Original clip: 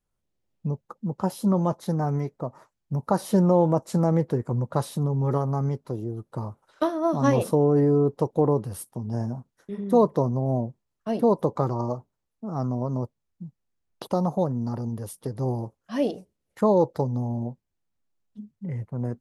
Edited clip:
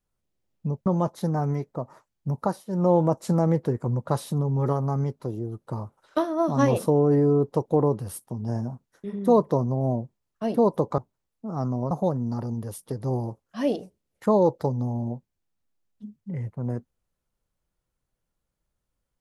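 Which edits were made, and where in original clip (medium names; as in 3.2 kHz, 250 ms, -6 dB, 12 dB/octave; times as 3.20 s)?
0.86–1.51 s: delete
3.06–3.55 s: dip -22.5 dB, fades 0.24 s
11.63–11.97 s: delete
12.90–14.26 s: delete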